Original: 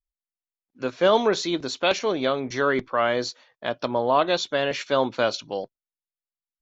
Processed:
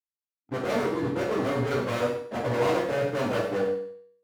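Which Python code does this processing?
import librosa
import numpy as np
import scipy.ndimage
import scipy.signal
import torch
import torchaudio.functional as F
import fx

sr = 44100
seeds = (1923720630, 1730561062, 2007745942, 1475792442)

y = scipy.signal.sosfilt(scipy.signal.butter(8, 1500.0, 'lowpass', fs=sr, output='sos'), x)
y = fx.peak_eq(y, sr, hz=340.0, db=6.0, octaves=1.4)
y = fx.stretch_vocoder_free(y, sr, factor=0.64)
y = fx.leveller(y, sr, passes=5)
y = fx.low_shelf(y, sr, hz=240.0, db=11.0)
y = fx.clip_asym(y, sr, top_db=-12.0, bottom_db=-11.5)
y = scipy.signal.sosfilt(scipy.signal.butter(2, 72.0, 'highpass', fs=sr, output='sos'), y)
y = fx.comb_fb(y, sr, f0_hz=96.0, decay_s=0.6, harmonics='all', damping=0.0, mix_pct=70)
y = fx.echo_feedback(y, sr, ms=98, feedback_pct=31, wet_db=-13.5)
y = fx.rev_gated(y, sr, seeds[0], gate_ms=190, shape='falling', drr_db=-2.0)
y = F.gain(torch.from_numpy(y), -8.5).numpy()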